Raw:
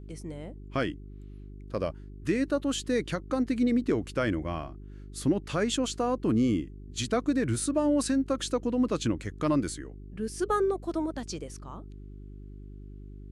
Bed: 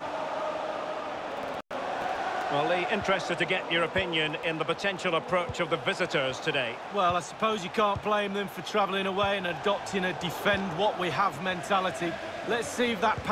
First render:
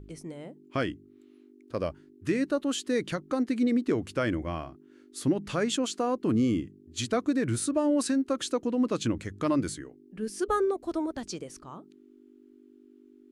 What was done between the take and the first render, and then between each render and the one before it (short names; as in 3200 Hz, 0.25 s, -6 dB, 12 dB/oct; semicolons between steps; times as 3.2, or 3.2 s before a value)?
de-hum 50 Hz, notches 4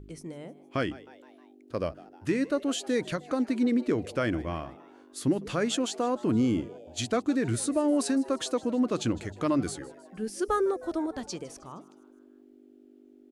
frequency-shifting echo 0.156 s, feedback 56%, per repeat +120 Hz, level -20 dB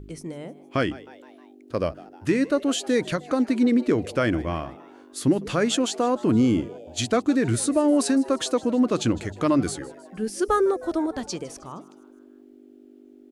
gain +5.5 dB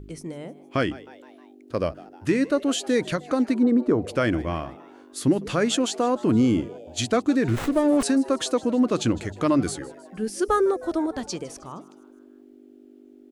3.54–4.08 resonant high shelf 1600 Hz -10.5 dB, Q 1.5; 7.48–8.03 running maximum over 9 samples